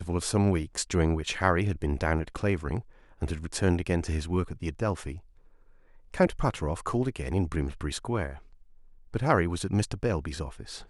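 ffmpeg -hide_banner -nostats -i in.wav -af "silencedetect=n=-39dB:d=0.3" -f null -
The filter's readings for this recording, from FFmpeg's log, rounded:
silence_start: 2.81
silence_end: 3.22 | silence_duration: 0.41
silence_start: 5.19
silence_end: 6.14 | silence_duration: 0.95
silence_start: 8.37
silence_end: 9.14 | silence_duration: 0.76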